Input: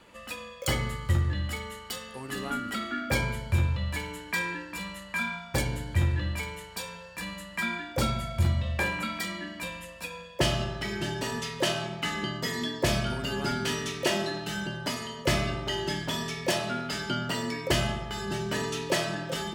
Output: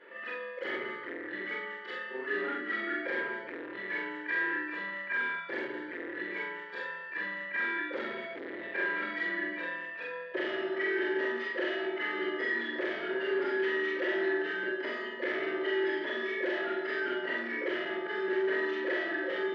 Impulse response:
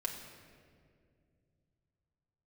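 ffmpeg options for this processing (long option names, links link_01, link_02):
-filter_complex "[0:a]afftfilt=real='re':imag='-im':win_size=4096:overlap=0.75,asplit=2[link_01][link_02];[link_02]alimiter=level_in=2.5dB:limit=-24dB:level=0:latency=1:release=175,volume=-2.5dB,volume=2dB[link_03];[link_01][link_03]amix=inputs=2:normalize=0,asoftclip=type=hard:threshold=-29.5dB,highpass=frequency=330:width=0.5412,highpass=frequency=330:width=1.3066,equalizer=frequency=380:width_type=q:width=4:gain=8,equalizer=frequency=760:width_type=q:width=4:gain=-10,equalizer=frequency=1100:width_type=q:width=4:gain=-7,equalizer=frequency=1800:width_type=q:width=4:gain=10,equalizer=frequency=2600:width_type=q:width=4:gain=-7,lowpass=frequency=2700:width=0.5412,lowpass=frequency=2700:width=1.3066"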